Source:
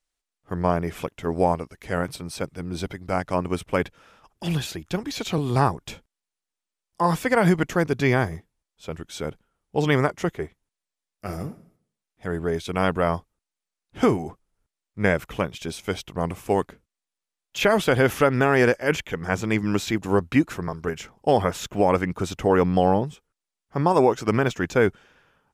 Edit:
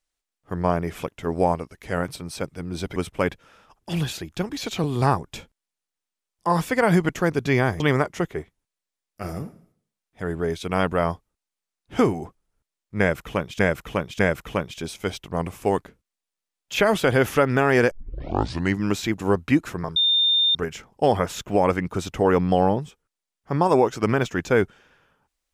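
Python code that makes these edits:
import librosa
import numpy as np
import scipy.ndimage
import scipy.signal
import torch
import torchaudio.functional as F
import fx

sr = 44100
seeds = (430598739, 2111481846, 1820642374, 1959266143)

y = fx.edit(x, sr, fx.cut(start_s=2.96, length_s=0.54),
    fx.cut(start_s=8.34, length_s=1.5),
    fx.repeat(start_s=15.03, length_s=0.6, count=3),
    fx.tape_start(start_s=18.75, length_s=0.88),
    fx.insert_tone(at_s=20.8, length_s=0.59, hz=3620.0, db=-16.0), tone=tone)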